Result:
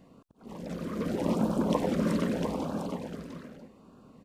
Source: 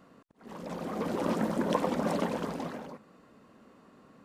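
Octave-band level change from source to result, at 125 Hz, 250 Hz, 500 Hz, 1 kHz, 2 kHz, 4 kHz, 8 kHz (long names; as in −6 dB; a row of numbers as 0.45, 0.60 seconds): +5.5, +3.5, +0.5, −2.5, −2.0, +0.5, +1.0 decibels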